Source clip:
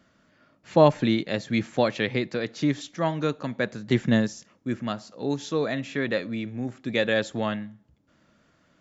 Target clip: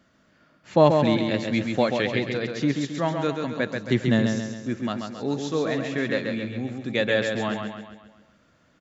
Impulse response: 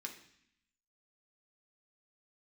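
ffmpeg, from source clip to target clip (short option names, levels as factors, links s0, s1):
-af "aecho=1:1:135|270|405|540|675|810:0.562|0.276|0.135|0.0662|0.0324|0.0159"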